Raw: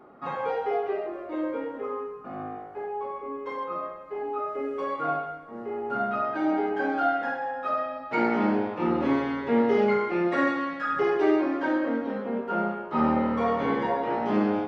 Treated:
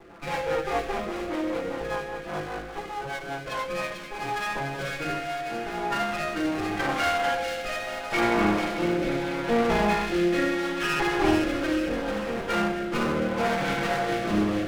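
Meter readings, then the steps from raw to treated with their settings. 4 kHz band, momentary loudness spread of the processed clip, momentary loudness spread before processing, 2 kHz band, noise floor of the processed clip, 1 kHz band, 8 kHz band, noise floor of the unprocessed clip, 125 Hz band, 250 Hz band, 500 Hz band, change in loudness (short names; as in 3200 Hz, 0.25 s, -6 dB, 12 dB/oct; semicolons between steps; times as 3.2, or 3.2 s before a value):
+12.5 dB, 10 LU, 11 LU, +4.5 dB, -37 dBFS, -0.5 dB, n/a, -41 dBFS, +5.0 dB, -0.5 dB, -0.5 dB, +0.5 dB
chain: minimum comb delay 5.9 ms; spring tank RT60 3.3 s, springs 57 ms, chirp 70 ms, DRR 8 dB; in parallel at +2 dB: compressor, threshold -34 dBFS, peak gain reduction 14 dB; on the sum: high shelf 4200 Hz +8.5 dB; rotary speaker horn 5 Hz, later 0.75 Hz, at 3.37; on a send: thin delay 0.444 s, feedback 49%, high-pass 2400 Hz, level -4 dB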